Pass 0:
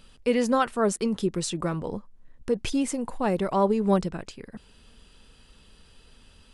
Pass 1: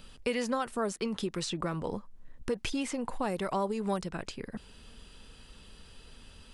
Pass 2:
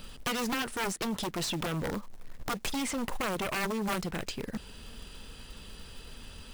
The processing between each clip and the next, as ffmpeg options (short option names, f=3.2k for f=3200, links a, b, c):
-filter_complex "[0:a]acrossover=split=770|5100[a][b][c];[a]acompressor=threshold=-35dB:ratio=4[d];[b]acompressor=threshold=-37dB:ratio=4[e];[c]acompressor=threshold=-49dB:ratio=4[f];[d][e][f]amix=inputs=3:normalize=0,volume=2dB"
-af "acrusher=bits=4:mode=log:mix=0:aa=0.000001,aeval=exprs='0.141*(cos(1*acos(clip(val(0)/0.141,-1,1)))-cos(1*PI/2))+0.0282*(cos(3*acos(clip(val(0)/0.141,-1,1)))-cos(3*PI/2))+0.0178*(cos(6*acos(clip(val(0)/0.141,-1,1)))-cos(6*PI/2))+0.0631*(cos(7*acos(clip(val(0)/0.141,-1,1)))-cos(7*PI/2))':c=same,volume=-3dB"